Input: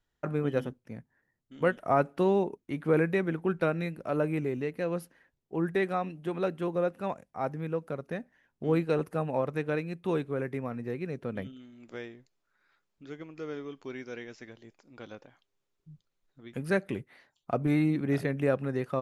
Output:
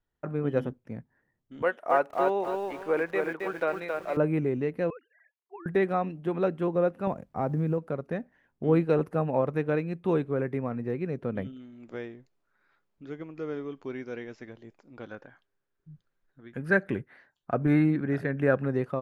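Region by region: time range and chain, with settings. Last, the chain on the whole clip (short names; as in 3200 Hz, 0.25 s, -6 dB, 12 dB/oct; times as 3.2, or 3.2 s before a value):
1.62–4.17 HPF 560 Hz + notch 1300 Hz, Q 24 + lo-fi delay 0.27 s, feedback 35%, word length 8-bit, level -3.5 dB
4.9–5.66 sine-wave speech + HPF 960 Hz + negative-ratio compressor -45 dBFS, ratio -0.5
7.07–7.78 low shelf 460 Hz +9 dB + compressor 4:1, threshold -27 dBFS + companded quantiser 8-bit
15.05–18.66 bell 1600 Hz +11 dB 0.4 oct + tremolo triangle 1.2 Hz, depth 45%
whole clip: high shelf 2700 Hz -12 dB; AGC gain up to 6 dB; gain -2 dB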